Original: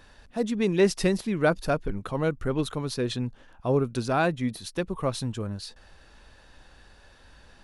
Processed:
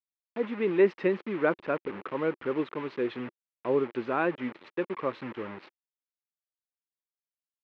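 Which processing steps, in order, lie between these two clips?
bit-crush 6-bit; speaker cabinet 330–2400 Hz, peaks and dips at 350 Hz +4 dB, 700 Hz -9 dB, 1500 Hz -3 dB

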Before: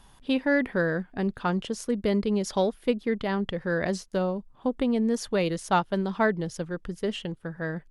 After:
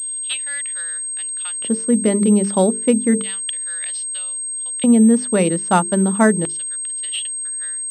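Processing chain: LFO high-pass square 0.31 Hz 210–3300 Hz; notches 50/100/150/200/250/300/350/400/450 Hz; pulse-width modulation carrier 8400 Hz; gain +6.5 dB

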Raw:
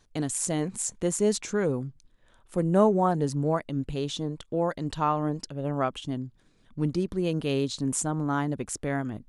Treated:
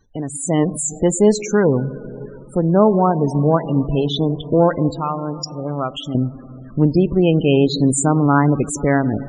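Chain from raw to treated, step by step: 4.91–6.15 pre-emphasis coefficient 0.8; in parallel at +2 dB: compressor 10:1, threshold -39 dBFS, peak gain reduction 24 dB; on the sum: added harmonics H 4 -36 dB, 7 -40 dB, 8 -34 dB, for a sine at -7.5 dBFS; on a send at -13.5 dB: reverb RT60 3.6 s, pre-delay 13 ms; on the sum: loudest bins only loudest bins 32; AGC gain up to 13 dB

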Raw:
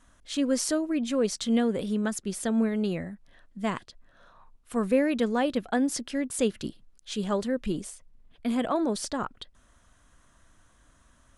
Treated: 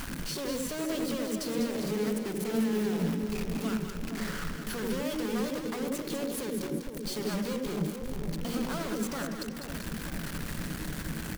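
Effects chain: high shelf 4600 Hz -5 dB; comb 0.9 ms, depth 40%; in parallel at +2 dB: upward compressor, threshold -31 dBFS; on the sum: limiter -13 dBFS, peak gain reduction 6 dB; compressor 20:1, threshold -34 dBFS, peak gain reduction 19 dB; bit-crush 11-bit; formant shift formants +5 st; companded quantiser 2-bit; split-band echo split 900 Hz, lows 0.469 s, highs 0.198 s, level -6.5 dB; on a send at -7 dB: reverb, pre-delay 77 ms; on the sum: gain -8 dB

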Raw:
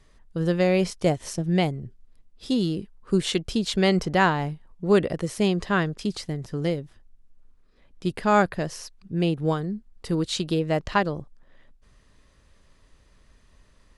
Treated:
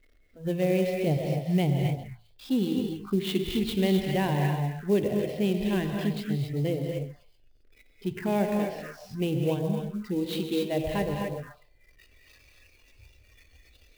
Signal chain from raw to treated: zero-crossing step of -33 dBFS; spectral noise reduction 20 dB; bell 140 Hz +8 dB 0.31 oct; in parallel at -1 dB: limiter -15 dBFS, peak gain reduction 7.5 dB; on the sum: air absorption 200 m; de-hum 55.67 Hz, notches 7; on a send: delay with a stepping band-pass 0.132 s, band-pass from 720 Hz, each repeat 1.4 oct, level -7.5 dB; on the sum: non-linear reverb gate 0.29 s rising, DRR 2.5 dB; envelope phaser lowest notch 150 Hz, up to 1300 Hz, full sweep at -18.5 dBFS; clock jitter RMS 0.02 ms; gain -7.5 dB

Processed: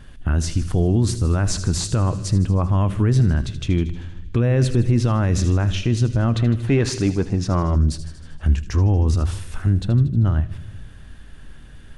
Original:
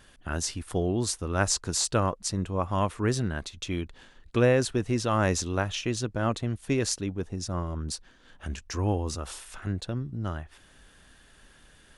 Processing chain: tone controls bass +13 dB, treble -6 dB; thin delay 78 ms, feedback 64%, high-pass 2700 Hz, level -11 dB; 6.36–7.76 overdrive pedal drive 15 dB, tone 2200 Hz, clips at -7.5 dBFS; on a send at -20 dB: low shelf 490 Hz +10 dB + reverb RT60 1.0 s, pre-delay 3 ms; on the sum: limiter -13.5 dBFS, peak gain reduction 10.5 dB; gain +5 dB

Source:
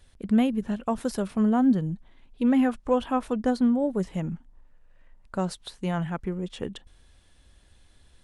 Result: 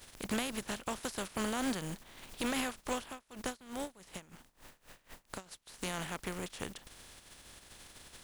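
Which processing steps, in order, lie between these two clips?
spectral contrast lowered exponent 0.42; compressor 2:1, threshold -43 dBFS, peak gain reduction 15 dB; 3.01–5.72 dB-linear tremolo 2.3 Hz -> 5.6 Hz, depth 22 dB

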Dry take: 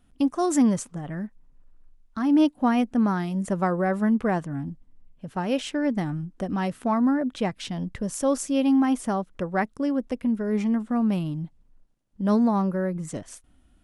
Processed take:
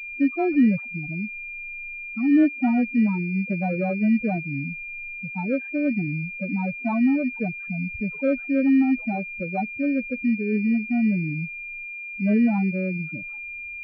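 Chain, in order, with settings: crackle 170/s -48 dBFS; loudest bins only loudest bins 4; pulse-width modulation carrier 2400 Hz; gain +2 dB

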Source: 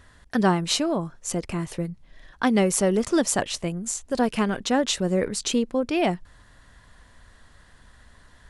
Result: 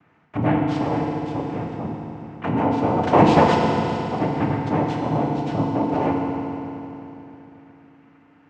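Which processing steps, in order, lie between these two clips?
3.03–3.54 sample leveller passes 5; noise vocoder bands 4; LPF 1600 Hz 12 dB/oct; FDN reverb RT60 3.2 s, low-frequency decay 1.2×, high-frequency decay 0.95×, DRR -1 dB; gain -2 dB

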